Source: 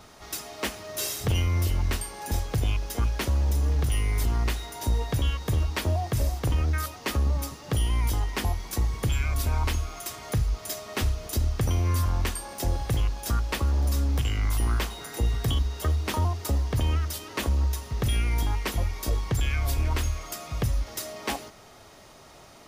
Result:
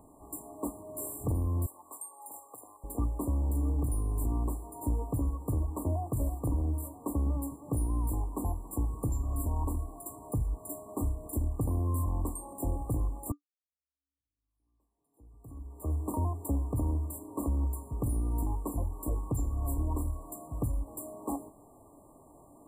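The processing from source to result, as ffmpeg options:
ffmpeg -i in.wav -filter_complex "[0:a]asettb=1/sr,asplit=3[link_01][link_02][link_03];[link_01]atrim=end=1.664[link_04];[link_02]atrim=start=1.66:end=2.84,asetpts=PTS-STARTPTS,afade=type=in:duration=0.004:curve=qsin,afade=type=out:start_time=1.176:duration=0.004:curve=qsin,highpass=1000[link_05];[link_03]atrim=start=2.836[link_06];[link_04][link_05]acrossfade=duration=0.004:curve1=hsin:curve2=qsin[link_07];[link_07][link_06]acrossfade=duration=0.004:curve1=qsin:curve2=hsin,asplit=2[link_08][link_09];[link_08]atrim=end=13.32,asetpts=PTS-STARTPTS,afade=type=out:start_time=13.316:duration=0.004:curve=hsin[link_10];[link_09]atrim=start=13.32,asetpts=PTS-STARTPTS,afade=type=in:duration=2.62:curve=exp[link_11];[link_10][link_11]concat=n=2:v=0:a=1,afftfilt=real='re*(1-between(b*sr/4096,1200,7200))':imag='im*(1-between(b*sr/4096,1200,7200))':win_size=4096:overlap=0.75,equalizer=frequency=290:width=5.9:gain=13.5,volume=-6dB" out.wav

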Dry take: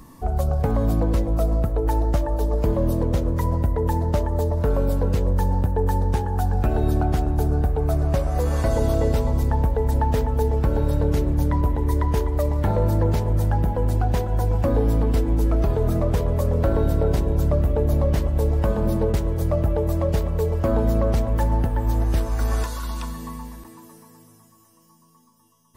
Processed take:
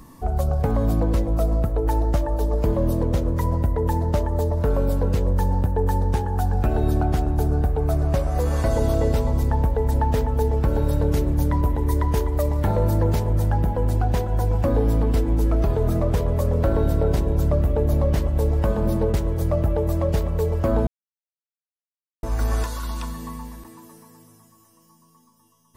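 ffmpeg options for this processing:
ffmpeg -i in.wav -filter_complex "[0:a]asettb=1/sr,asplit=3[link_01][link_02][link_03];[link_01]atrim=end=10.684[link_04];[link_02]atrim=start=10.68:end=13.27,asetpts=PTS-STARTPTS,afade=type=in:duration=0.004:curve=qsin,afade=type=out:start_time=2.586:duration=0.004:curve=qsin,highshelf=frequency=6600:gain=4.5[link_05];[link_03]atrim=start=13.266[link_06];[link_04][link_05]acrossfade=duration=0.004:curve1=hsin:curve2=qsin[link_07];[link_07][link_06]acrossfade=duration=0.004:curve1=qsin:curve2=hsin,asplit=3[link_08][link_09][link_10];[link_08]atrim=end=20.87,asetpts=PTS-STARTPTS,afade=type=out:start_time=20.866:duration=0.004:curve=hsin[link_11];[link_09]atrim=start=20.87:end=22.23,asetpts=PTS-STARTPTS,volume=0[link_12];[link_10]atrim=start=22.23,asetpts=PTS-STARTPTS,afade=type=in:duration=0.004:curve=hsin[link_13];[link_11][link_12][link_13]concat=n=3:v=0:a=1" out.wav

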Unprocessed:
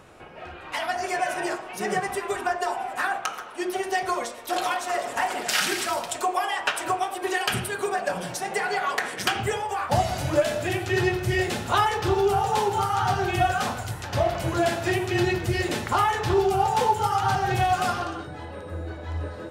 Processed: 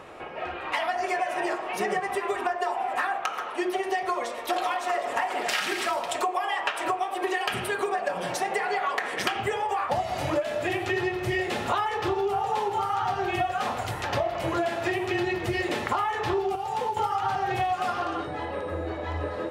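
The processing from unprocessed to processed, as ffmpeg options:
ffmpeg -i in.wav -filter_complex "[0:a]asettb=1/sr,asplit=3[link_01][link_02][link_03];[link_01]atrim=end=16.554[link_04];[link_02]atrim=start=16.55:end=16.97,asetpts=PTS-STARTPTS,afade=type=in:duration=0.004:curve=qsin,afade=type=out:start_time=0.416:duration=0.004:curve=qsin,acrossover=split=360|2600|7000[link_05][link_06][link_07][link_08];[link_05]acompressor=threshold=-42dB:ratio=3[link_09];[link_06]acompressor=threshold=-36dB:ratio=3[link_10];[link_07]acompressor=threshold=-51dB:ratio=3[link_11];[link_08]acompressor=threshold=-53dB:ratio=3[link_12];[link_09][link_10][link_11][link_12]amix=inputs=4:normalize=0[link_13];[link_03]atrim=start=16.966[link_14];[link_04][link_13]acrossfade=duration=0.004:curve1=hsin:curve2=qsin[link_15];[link_15][link_14]acrossfade=duration=0.004:curve1=qsin:curve2=hsin,bass=frequency=250:gain=-10,treble=frequency=4000:gain=-10,bandreject=frequency=1500:width=12,acompressor=threshold=-32dB:ratio=6,volume=7.5dB" out.wav

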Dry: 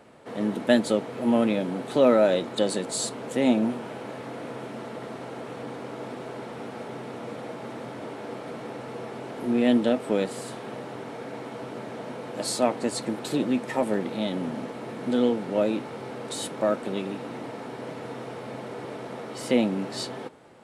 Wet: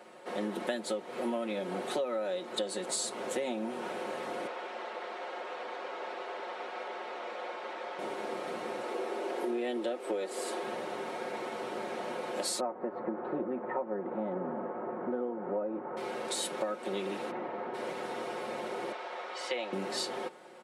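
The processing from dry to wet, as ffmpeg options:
ffmpeg -i in.wav -filter_complex "[0:a]asettb=1/sr,asplit=3[link_01][link_02][link_03];[link_01]atrim=end=4.474[link_04];[link_02]atrim=start=4.47:end=7.99,asetpts=PTS-STARTPTS,afade=type=in:duration=0.004:curve=qsin,afade=type=out:start_time=3.516:duration=0.004:curve=qsin,highpass=530,lowpass=4500[link_05];[link_03]atrim=start=7.986[link_06];[link_04][link_05]acrossfade=duration=0.004:curve1=hsin:curve2=qsin[link_07];[link_07][link_06]acrossfade=duration=0.004:curve1=qsin:curve2=hsin,asettb=1/sr,asplit=3[link_08][link_09][link_10];[link_08]atrim=end=8.834[link_11];[link_09]atrim=start=8.83:end=10.63,asetpts=PTS-STARTPTS,afade=type=in:duration=0.004:curve=qsin,afade=type=out:start_time=1.796:duration=0.004:curve=qsin,highpass=frequency=340:width_type=q:width=1.6[link_12];[link_10]atrim=start=10.626[link_13];[link_11][link_12]acrossfade=duration=0.004:curve1=hsin:curve2=qsin[link_14];[link_14][link_13]acrossfade=duration=0.004:curve1=qsin:curve2=hsin,asettb=1/sr,asplit=3[link_15][link_16][link_17];[link_15]atrim=end=12.604[link_18];[link_16]atrim=start=12.6:end=15.97,asetpts=PTS-STARTPTS,afade=type=in:duration=0.004:curve=qsin,afade=type=out:start_time=3.366:duration=0.004:curve=qsin,lowpass=frequency=1400:width=0.5412,lowpass=frequency=1400:width=1.3066[link_19];[link_17]atrim=start=15.966[link_20];[link_18][link_19]acrossfade=duration=0.004:curve1=hsin:curve2=qsin[link_21];[link_21][link_20]acrossfade=duration=0.004:curve1=qsin:curve2=hsin,asplit=3[link_22][link_23][link_24];[link_22]afade=type=out:start_time=17.3:duration=0.02[link_25];[link_23]lowpass=1800,afade=type=in:start_time=17.3:duration=0.02,afade=type=out:start_time=17.73:duration=0.02[link_26];[link_24]afade=type=in:start_time=17.73:duration=0.02[link_27];[link_25][link_26][link_27]amix=inputs=3:normalize=0,asettb=1/sr,asplit=3[link_28][link_29][link_30];[link_28]atrim=end=18.924[link_31];[link_29]atrim=start=18.92:end=19.73,asetpts=PTS-STARTPTS,afade=type=in:duration=0.004:curve=qsin,afade=type=out:start_time=0.806:duration=0.004:curve=qsin,highpass=650,lowpass=4700[link_32];[link_30]atrim=start=19.726[link_33];[link_31][link_32]acrossfade=duration=0.004:curve1=hsin:curve2=qsin[link_34];[link_34][link_33]acrossfade=duration=0.004:curve1=qsin:curve2=hsin,highpass=330,aecho=1:1:5.5:0.68,acompressor=threshold=-30dB:ratio=16" out.wav

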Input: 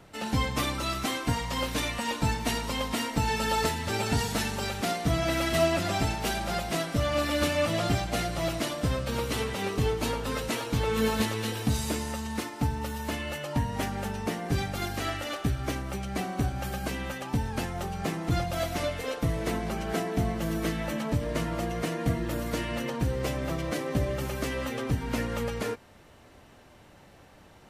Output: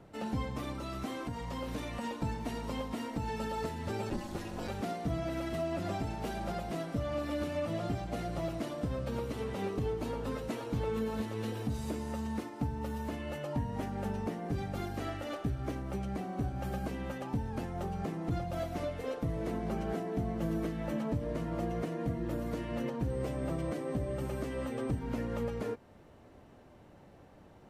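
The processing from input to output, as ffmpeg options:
ffmpeg -i in.wav -filter_complex "[0:a]asettb=1/sr,asplit=3[link_01][link_02][link_03];[link_01]atrim=end=0.724[link_04];[link_02]atrim=start=0.72:end=2.04,asetpts=PTS-STARTPTS,afade=type=in:duration=0.004:curve=qsin,afade=type=out:start_time=1.316:duration=0.004:curve=qsin,acompressor=threshold=-30dB:ratio=6:attack=3.2:release=140:knee=1:detection=peak[link_05];[link_03]atrim=start=2.036[link_06];[link_04][link_05]acrossfade=duration=0.004:curve1=hsin:curve2=qsin[link_07];[link_07][link_06]acrossfade=duration=0.004:curve1=qsin:curve2=hsin,asplit=3[link_08][link_09][link_10];[link_08]afade=type=out:start_time=4.09:duration=0.02[link_11];[link_09]aeval=exprs='val(0)*sin(2*PI*120*n/s)':channel_layout=same,afade=type=in:start_time=4.09:duration=0.02,afade=type=out:start_time=4.67:duration=0.02[link_12];[link_10]afade=type=in:start_time=4.67:duration=0.02[link_13];[link_11][link_12][link_13]amix=inputs=3:normalize=0,asettb=1/sr,asplit=3[link_14][link_15][link_16];[link_14]atrim=end=23.104[link_17];[link_15]atrim=start=23.1:end=24.99,asetpts=PTS-STARTPTS,afade=type=in:duration=0.004:curve=qsin,afade=type=out:start_time=1.886:duration=0.004:curve=qsin,aeval=exprs='val(0)+0.00447*sin(2*PI*8400*n/s)':channel_layout=same[link_18];[link_16]atrim=start=24.986[link_19];[link_17][link_18]acrossfade=duration=0.004:curve1=hsin:curve2=qsin[link_20];[link_20][link_19]acrossfade=duration=0.004:curve1=qsin:curve2=hsin,lowshelf=frequency=130:gain=-5.5,alimiter=limit=-23.5dB:level=0:latency=1:release=297,tiltshelf=frequency=1100:gain=7,volume=-5.5dB" out.wav

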